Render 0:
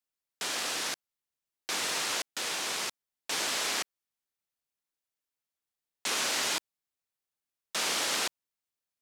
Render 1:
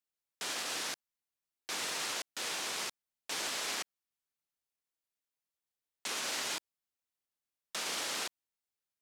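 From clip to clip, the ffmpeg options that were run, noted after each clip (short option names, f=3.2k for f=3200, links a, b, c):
-af "alimiter=limit=-23.5dB:level=0:latency=1,volume=-3.5dB"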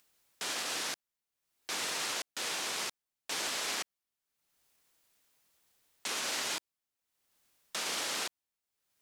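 -af "acompressor=mode=upward:threshold=-58dB:ratio=2.5,volume=1.5dB"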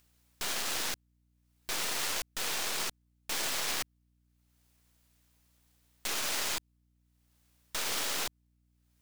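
-af "aeval=exprs='val(0)+0.000316*(sin(2*PI*60*n/s)+sin(2*PI*2*60*n/s)/2+sin(2*PI*3*60*n/s)/3+sin(2*PI*4*60*n/s)/4+sin(2*PI*5*60*n/s)/5)':c=same,aeval=exprs='0.0562*(cos(1*acos(clip(val(0)/0.0562,-1,1)))-cos(1*PI/2))+0.02*(cos(6*acos(clip(val(0)/0.0562,-1,1)))-cos(6*PI/2))+0.0282*(cos(8*acos(clip(val(0)/0.0562,-1,1)))-cos(8*PI/2))':c=same"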